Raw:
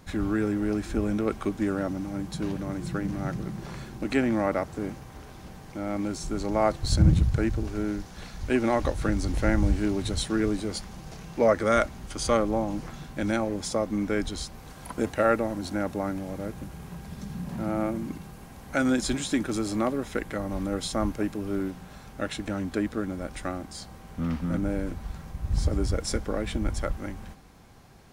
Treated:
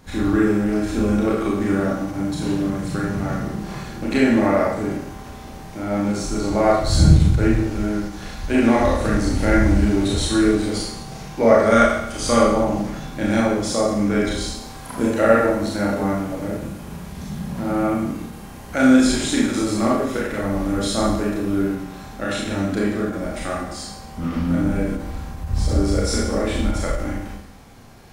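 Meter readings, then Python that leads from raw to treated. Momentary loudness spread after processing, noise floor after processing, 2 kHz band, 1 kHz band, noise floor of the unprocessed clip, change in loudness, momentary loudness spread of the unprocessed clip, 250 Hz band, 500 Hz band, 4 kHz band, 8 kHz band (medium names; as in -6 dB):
15 LU, -37 dBFS, +8.0 dB, +8.0 dB, -46 dBFS, +8.0 dB, 15 LU, +9.0 dB, +8.0 dB, +8.0 dB, +8.0 dB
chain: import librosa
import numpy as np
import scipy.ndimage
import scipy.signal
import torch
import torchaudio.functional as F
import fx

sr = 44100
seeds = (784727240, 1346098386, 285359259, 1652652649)

y = fx.rev_schroeder(x, sr, rt60_s=0.79, comb_ms=27, drr_db=-5.0)
y = fx.end_taper(y, sr, db_per_s=130.0)
y = y * librosa.db_to_amplitude(2.0)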